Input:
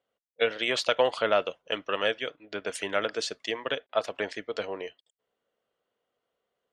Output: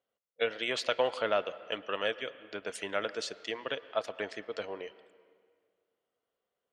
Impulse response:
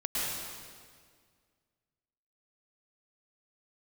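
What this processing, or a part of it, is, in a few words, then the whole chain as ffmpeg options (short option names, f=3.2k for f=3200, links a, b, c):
filtered reverb send: -filter_complex "[0:a]asplit=2[a][b];[b]highpass=f=230:p=1,lowpass=3.1k[c];[1:a]atrim=start_sample=2205[d];[c][d]afir=irnorm=-1:irlink=0,volume=-22dB[e];[a][e]amix=inputs=2:normalize=0,volume=-5.5dB"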